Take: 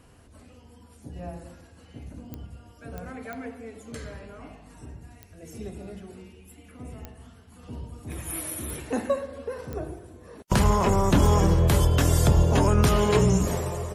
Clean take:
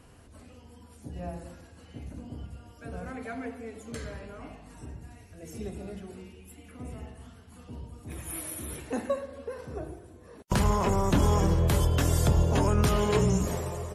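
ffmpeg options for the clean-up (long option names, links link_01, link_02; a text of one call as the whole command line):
ffmpeg -i in.wav -af "adeclick=threshold=4,asetnsamples=nb_out_samples=441:pad=0,asendcmd='7.63 volume volume -4dB',volume=0dB" out.wav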